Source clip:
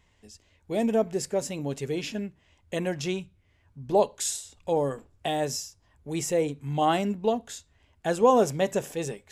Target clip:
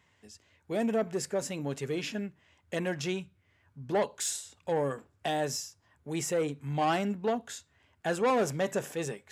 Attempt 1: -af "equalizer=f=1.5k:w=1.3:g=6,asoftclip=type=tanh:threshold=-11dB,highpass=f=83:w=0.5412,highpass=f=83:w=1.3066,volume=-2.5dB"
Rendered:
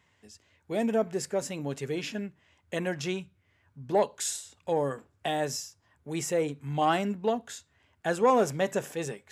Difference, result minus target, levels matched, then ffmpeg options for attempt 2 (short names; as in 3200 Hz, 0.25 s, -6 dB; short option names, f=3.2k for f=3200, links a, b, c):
soft clip: distortion -10 dB
-af "equalizer=f=1.5k:w=1.3:g=6,asoftclip=type=tanh:threshold=-19.5dB,highpass=f=83:w=0.5412,highpass=f=83:w=1.3066,volume=-2.5dB"